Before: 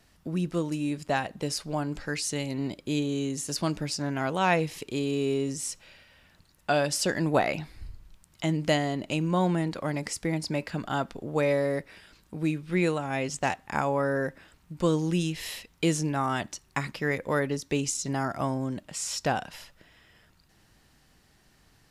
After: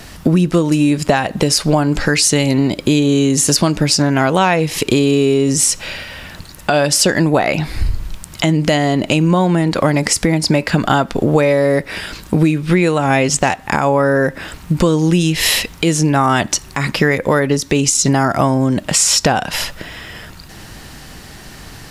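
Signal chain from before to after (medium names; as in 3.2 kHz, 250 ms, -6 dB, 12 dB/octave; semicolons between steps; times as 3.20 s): compression 12:1, threshold -36 dBFS, peak gain reduction 18.5 dB; loudness maximiser +27.5 dB; trim -1 dB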